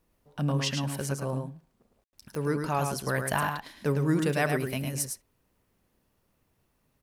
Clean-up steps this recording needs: de-click; room tone fill 2.04–2.13; inverse comb 0.107 s -5.5 dB

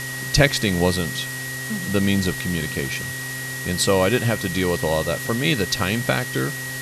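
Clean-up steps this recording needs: de-hum 130.5 Hz, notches 4; notch 1900 Hz, Q 30; denoiser 30 dB, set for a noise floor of -30 dBFS

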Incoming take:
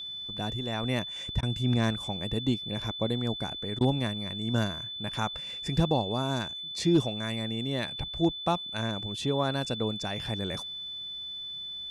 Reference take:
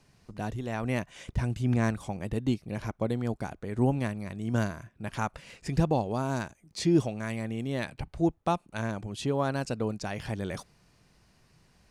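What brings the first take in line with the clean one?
clip repair -15 dBFS; notch 3500 Hz, Q 30; interpolate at 1.41/3.79, 16 ms

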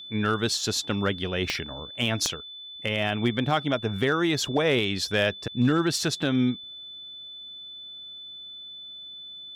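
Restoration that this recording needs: clip repair -14.5 dBFS; de-click; notch 3500 Hz, Q 30

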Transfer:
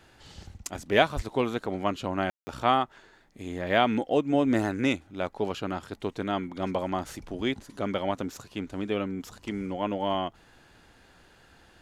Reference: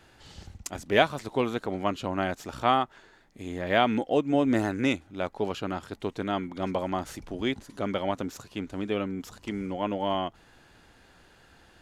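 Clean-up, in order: 1.15–1.27 HPF 140 Hz 24 dB/oct; room tone fill 2.3–2.47

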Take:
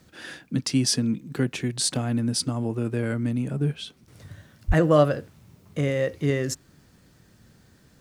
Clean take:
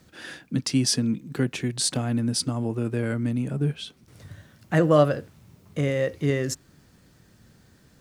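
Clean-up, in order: 4.67–4.79 HPF 140 Hz 24 dB/oct

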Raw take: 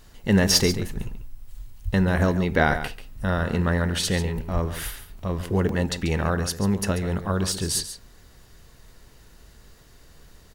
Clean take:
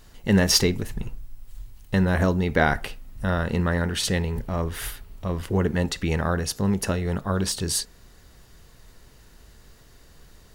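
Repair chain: 1.84–1.96 HPF 140 Hz 24 dB/oct; 4.53–4.65 HPF 140 Hz 24 dB/oct; interpolate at 5.19/5.69, 2.2 ms; inverse comb 0.139 s -11.5 dB

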